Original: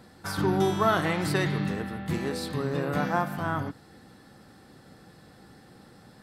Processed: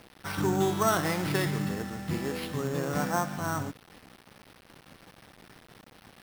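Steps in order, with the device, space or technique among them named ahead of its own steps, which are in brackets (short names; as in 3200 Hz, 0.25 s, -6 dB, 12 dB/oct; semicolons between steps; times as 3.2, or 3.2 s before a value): early 8-bit sampler (sample-rate reducer 7100 Hz, jitter 0%; bit-crush 8-bit); gain -2 dB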